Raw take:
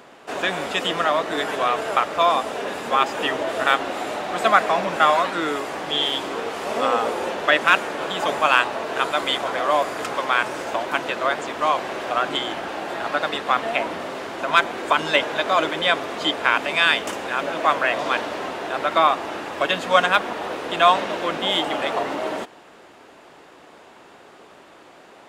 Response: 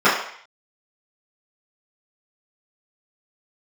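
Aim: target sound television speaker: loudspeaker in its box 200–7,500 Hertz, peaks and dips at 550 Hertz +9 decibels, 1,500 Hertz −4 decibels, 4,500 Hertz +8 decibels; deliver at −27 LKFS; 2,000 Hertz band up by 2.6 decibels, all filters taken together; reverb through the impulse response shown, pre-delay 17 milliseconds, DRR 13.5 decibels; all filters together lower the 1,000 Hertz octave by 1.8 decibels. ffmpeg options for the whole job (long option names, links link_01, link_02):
-filter_complex "[0:a]equalizer=frequency=1000:width_type=o:gain=-4.5,equalizer=frequency=2000:width_type=o:gain=7,asplit=2[link_01][link_02];[1:a]atrim=start_sample=2205,adelay=17[link_03];[link_02][link_03]afir=irnorm=-1:irlink=0,volume=-38.5dB[link_04];[link_01][link_04]amix=inputs=2:normalize=0,highpass=frequency=200:width=0.5412,highpass=frequency=200:width=1.3066,equalizer=frequency=550:width_type=q:width=4:gain=9,equalizer=frequency=1500:width_type=q:width=4:gain=-4,equalizer=frequency=4500:width_type=q:width=4:gain=8,lowpass=frequency=7500:width=0.5412,lowpass=frequency=7500:width=1.3066,volume=-7.5dB"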